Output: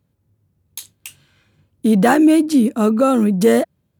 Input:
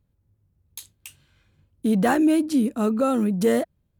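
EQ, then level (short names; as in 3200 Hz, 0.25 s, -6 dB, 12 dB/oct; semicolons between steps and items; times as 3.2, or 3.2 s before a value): HPF 110 Hz 12 dB/oct; +7.0 dB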